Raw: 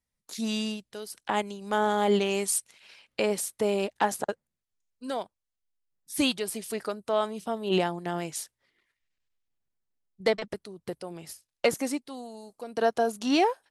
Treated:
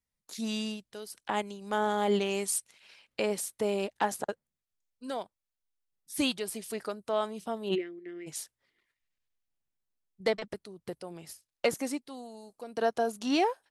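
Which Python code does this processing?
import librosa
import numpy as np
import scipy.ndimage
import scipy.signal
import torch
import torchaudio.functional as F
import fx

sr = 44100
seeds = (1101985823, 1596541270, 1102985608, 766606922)

y = fx.double_bandpass(x, sr, hz=860.0, octaves=2.5, at=(7.74, 8.26), fade=0.02)
y = y * 10.0 ** (-3.5 / 20.0)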